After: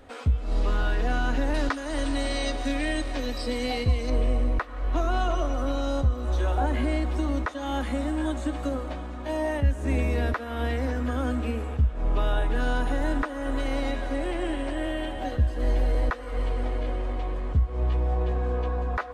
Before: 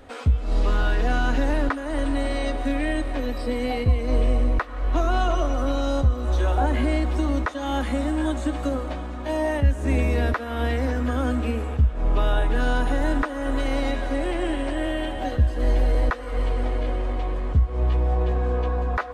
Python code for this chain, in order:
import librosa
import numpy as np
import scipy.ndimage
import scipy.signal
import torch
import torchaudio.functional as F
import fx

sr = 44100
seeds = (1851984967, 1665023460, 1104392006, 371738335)

y = fx.peak_eq(x, sr, hz=5500.0, db=12.0, octaves=1.6, at=(1.54, 4.1))
y = y * 10.0 ** (-3.5 / 20.0)